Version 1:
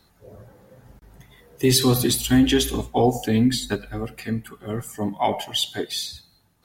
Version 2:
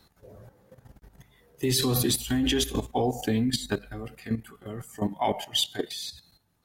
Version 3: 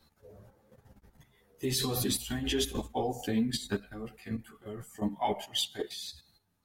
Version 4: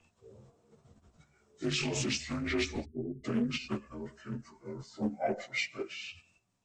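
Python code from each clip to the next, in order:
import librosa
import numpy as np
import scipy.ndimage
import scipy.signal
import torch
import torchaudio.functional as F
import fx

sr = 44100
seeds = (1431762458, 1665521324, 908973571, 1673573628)

y1 = fx.level_steps(x, sr, step_db=12)
y2 = fx.ensemble(y1, sr)
y2 = y2 * 10.0 ** (-2.0 / 20.0)
y3 = fx.partial_stretch(y2, sr, pct=84)
y3 = fx.spec_erase(y3, sr, start_s=2.85, length_s=0.39, low_hz=430.0, high_hz=8500.0)
y3 = fx.doppler_dist(y3, sr, depth_ms=0.34)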